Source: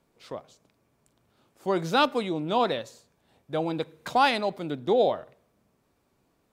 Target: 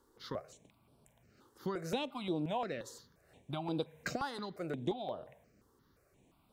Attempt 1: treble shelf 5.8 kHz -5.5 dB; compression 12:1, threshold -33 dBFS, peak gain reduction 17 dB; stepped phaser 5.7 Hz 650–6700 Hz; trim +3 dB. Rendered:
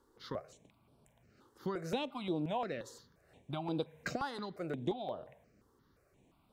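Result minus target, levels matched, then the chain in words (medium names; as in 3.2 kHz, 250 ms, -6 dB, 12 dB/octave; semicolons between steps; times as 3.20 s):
8 kHz band -3.0 dB
compression 12:1, threshold -33 dBFS, peak gain reduction 17.5 dB; stepped phaser 5.7 Hz 650–6700 Hz; trim +3 dB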